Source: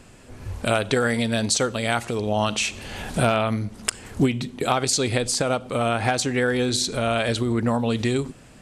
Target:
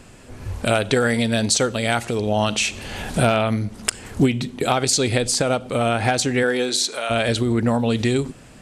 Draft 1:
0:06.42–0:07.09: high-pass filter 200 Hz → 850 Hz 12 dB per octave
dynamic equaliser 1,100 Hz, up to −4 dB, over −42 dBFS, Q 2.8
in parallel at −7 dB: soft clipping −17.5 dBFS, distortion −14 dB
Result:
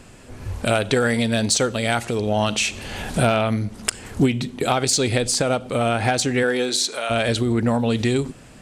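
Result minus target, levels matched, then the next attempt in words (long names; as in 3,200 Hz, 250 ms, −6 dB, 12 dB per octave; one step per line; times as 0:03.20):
soft clipping: distortion +10 dB
0:06.42–0:07.09: high-pass filter 200 Hz → 850 Hz 12 dB per octave
dynamic equaliser 1,100 Hz, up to −4 dB, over −42 dBFS, Q 2.8
in parallel at −7 dB: soft clipping −10 dBFS, distortion −24 dB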